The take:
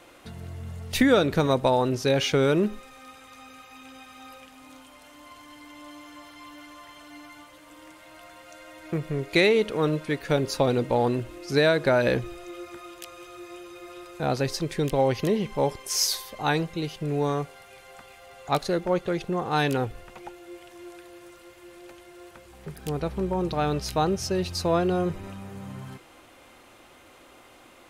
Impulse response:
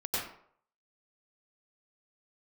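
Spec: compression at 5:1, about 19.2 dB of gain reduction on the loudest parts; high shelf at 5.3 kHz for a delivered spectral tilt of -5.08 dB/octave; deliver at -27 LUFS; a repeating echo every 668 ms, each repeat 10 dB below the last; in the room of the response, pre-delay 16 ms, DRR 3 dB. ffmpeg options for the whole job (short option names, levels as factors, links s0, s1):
-filter_complex "[0:a]highshelf=f=5300:g=-6,acompressor=threshold=0.0126:ratio=5,aecho=1:1:668|1336|2004|2672:0.316|0.101|0.0324|0.0104,asplit=2[s0][s1];[1:a]atrim=start_sample=2205,adelay=16[s2];[s1][s2]afir=irnorm=-1:irlink=0,volume=0.355[s3];[s0][s3]amix=inputs=2:normalize=0,volume=4.47"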